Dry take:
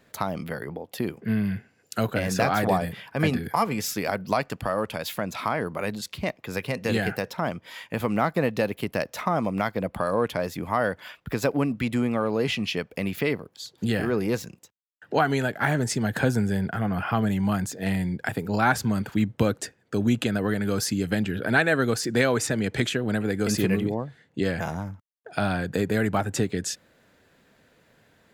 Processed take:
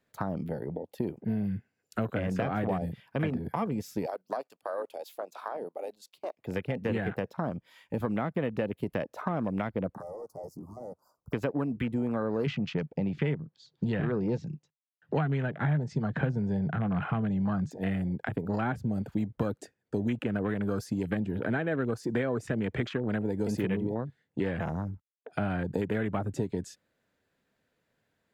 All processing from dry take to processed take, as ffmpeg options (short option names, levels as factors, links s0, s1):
-filter_complex "[0:a]asettb=1/sr,asplit=3[s0][s1][s2];[s0]atrim=end=4.064[s3];[s1]atrim=start=4.06:end=6.37,asetpts=PTS-STARTPTS,afade=t=in:d=0.004:c=qsin,afade=t=out:st=2.306:d=0.004:c=qsin,highpass=520,agate=range=0.316:threshold=0.00562:ratio=16:release=100:detection=peak,equalizer=f=1700:t=o:w=1.2:g=-10[s4];[s2]atrim=start=6.366[s5];[s3][s4]acrossfade=d=0.004:c1=hsin:c2=qsin[s6];[s6][s5]acrossfade=d=0.004:c1=qsin:c2=hsin,asettb=1/sr,asplit=3[s7][s8][s9];[s7]atrim=end=9.944[s10];[s8]atrim=start=9.94:end=11.33,asetpts=PTS-STARTPTS,afade=t=in:d=0.004:c=qsin,afade=t=out:st=1.386:d=0.004:c=qsin,acrossover=split=230|760[s11][s12][s13];[s11]acompressor=threshold=0.00501:ratio=4[s14];[s12]acompressor=threshold=0.0141:ratio=4[s15];[s13]acompressor=threshold=0.0316:ratio=4[s16];[s14][s15][s16]amix=inputs=3:normalize=0,volume=56.2,asoftclip=hard,volume=0.0178,asuperstop=centerf=2500:order=12:qfactor=0.66[s17];[s9]atrim=start=11.326[s18];[s10][s17]acrossfade=d=0.004:c1=hsin:c2=qsin[s19];[s19][s18]acrossfade=d=0.004:c1=qsin:c2=hsin,asettb=1/sr,asplit=3[s20][s21][s22];[s20]atrim=end=12.464[s23];[s21]atrim=start=12.46:end=17.71,asetpts=PTS-STARTPTS,afade=t=in:d=0.004:c=qsin,afade=t=out:st=5.246:d=0.004:c=qsin,lowpass=f=5900:w=0.5412,lowpass=f=5900:w=1.3066,equalizer=f=150:t=o:w=0.41:g=14.5[s24];[s22]atrim=start=17.706[s25];[s23][s24]acrossfade=d=0.004:c1=hsin:c2=qsin[s26];[s26][s25]acrossfade=d=0.004:c1=qsin:c2=hsin,afwtdn=0.0251,acrossover=split=540|1500[s27][s28][s29];[s27]acompressor=threshold=0.0398:ratio=4[s30];[s28]acompressor=threshold=0.0112:ratio=4[s31];[s29]acompressor=threshold=0.00631:ratio=4[s32];[s30][s31][s32]amix=inputs=3:normalize=0"